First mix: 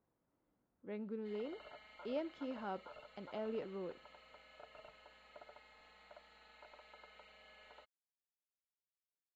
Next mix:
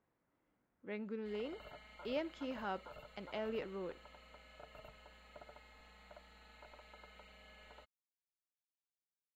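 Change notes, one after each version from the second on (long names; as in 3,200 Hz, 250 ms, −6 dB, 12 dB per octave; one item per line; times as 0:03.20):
speech: add parametric band 2,100 Hz +7.5 dB 1.4 octaves
background: add bass and treble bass +13 dB, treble −6 dB
master: remove high-frequency loss of the air 130 metres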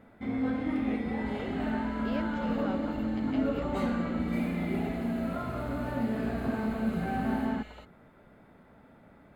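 first sound: unmuted
second sound +8.0 dB
master: add low-shelf EQ 220 Hz +6.5 dB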